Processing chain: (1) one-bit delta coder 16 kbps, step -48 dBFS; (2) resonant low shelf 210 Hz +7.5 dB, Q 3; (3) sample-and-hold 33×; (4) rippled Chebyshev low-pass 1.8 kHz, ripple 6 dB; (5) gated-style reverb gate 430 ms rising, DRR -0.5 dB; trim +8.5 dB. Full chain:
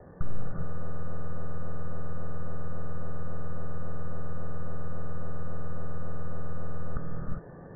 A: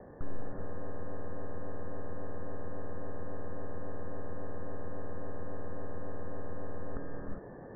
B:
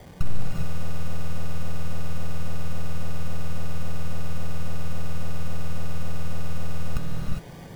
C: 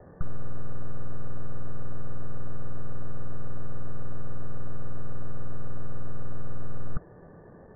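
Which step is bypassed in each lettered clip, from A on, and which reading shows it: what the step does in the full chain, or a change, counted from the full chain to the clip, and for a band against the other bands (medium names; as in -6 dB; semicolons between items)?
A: 2, 125 Hz band -6.0 dB; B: 4, 500 Hz band -4.0 dB; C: 5, crest factor change -4.0 dB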